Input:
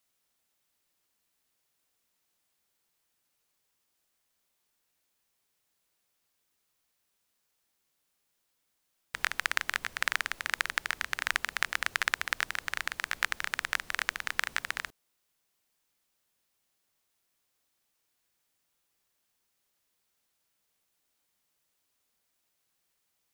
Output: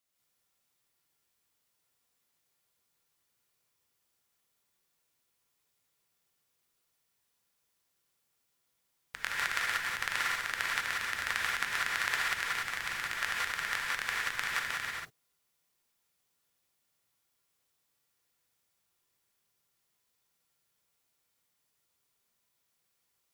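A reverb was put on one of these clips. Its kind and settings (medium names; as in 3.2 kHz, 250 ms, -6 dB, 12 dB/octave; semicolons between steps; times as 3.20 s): gated-style reverb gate 210 ms rising, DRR -5 dB; trim -6.5 dB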